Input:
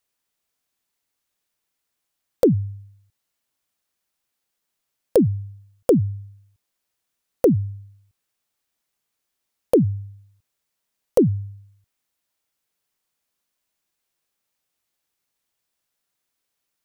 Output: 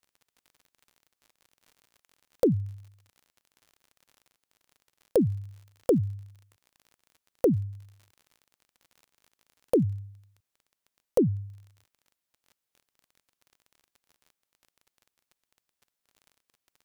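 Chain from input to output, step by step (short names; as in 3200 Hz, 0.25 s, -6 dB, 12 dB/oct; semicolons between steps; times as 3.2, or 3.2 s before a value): crackle 55/s -38 dBFS, from 9.83 s 11/s, from 11.5 s 30/s; gain -6.5 dB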